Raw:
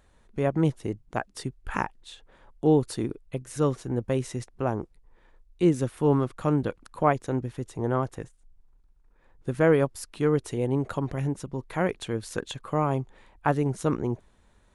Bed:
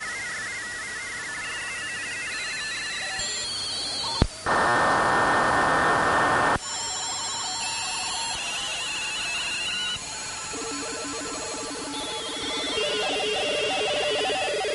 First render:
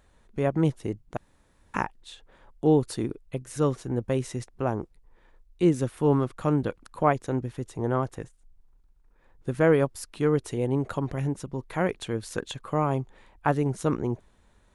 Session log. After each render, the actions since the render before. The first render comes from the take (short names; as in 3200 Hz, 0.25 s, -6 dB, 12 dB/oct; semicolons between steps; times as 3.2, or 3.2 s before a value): 1.17–1.74 room tone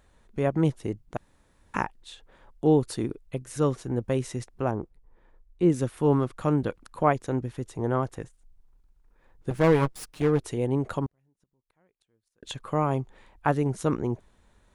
4.71–5.7 high shelf 2100 Hz -11 dB; 9.5–10.4 minimum comb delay 6.5 ms; 11.06–12.43 flipped gate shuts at -31 dBFS, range -42 dB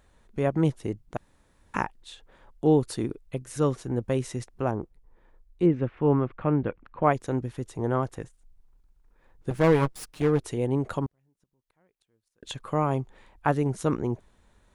5.66–7.03 Chebyshev low-pass 2500 Hz, order 3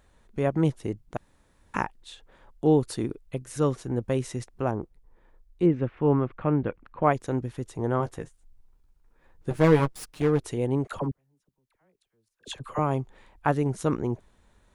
7.99–9.8 doubler 13 ms -7 dB; 10.87–12.79 dispersion lows, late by 52 ms, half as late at 820 Hz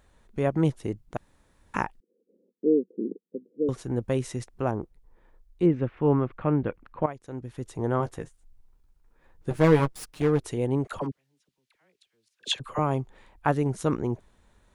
2–3.69 Chebyshev band-pass 190–500 Hz, order 4; 7.06–7.68 fade in quadratic, from -15 dB; 11.01–12.6 weighting filter D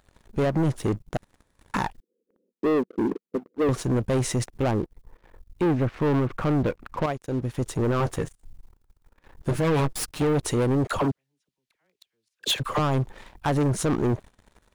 limiter -17.5 dBFS, peak gain reduction 10 dB; sample leveller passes 3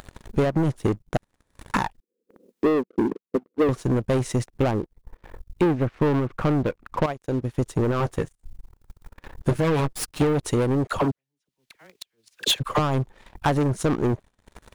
upward compressor, threshold -34 dBFS; transient shaper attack +5 dB, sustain -8 dB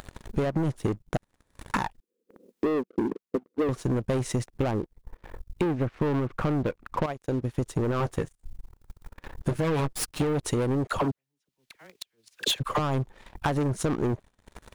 compressor 4:1, threshold -24 dBFS, peak gain reduction 7 dB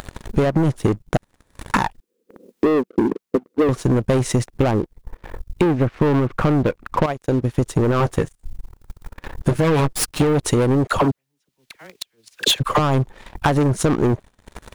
gain +9 dB